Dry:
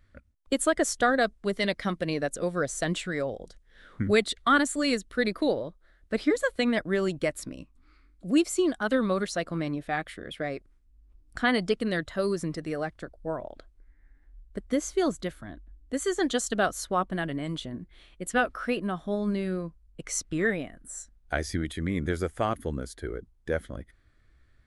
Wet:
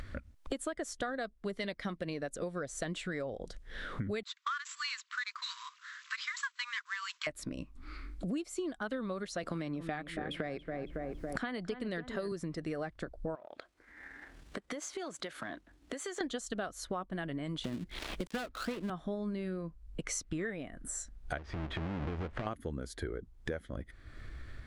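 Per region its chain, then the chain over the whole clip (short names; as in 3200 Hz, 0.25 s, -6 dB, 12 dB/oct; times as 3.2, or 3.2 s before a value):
4.23–7.27 CVSD 64 kbps + brick-wall FIR band-pass 960–7900 Hz
9.43–12.32 darkening echo 0.278 s, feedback 42%, low-pass 1500 Hz, level -12.5 dB + three-band squash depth 70%
13.35–16.21 half-wave gain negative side -3 dB + weighting filter A + compressor, threshold -45 dBFS
17.64–18.9 switching dead time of 0.2 ms + three-band squash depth 70%
21.38–22.47 half-waves squared off + LPF 2400 Hz + compressor 16:1, threshold -34 dBFS
whole clip: upward compressor, threshold -33 dBFS; high shelf 10000 Hz -10 dB; compressor 10:1, threshold -36 dBFS; gain +2 dB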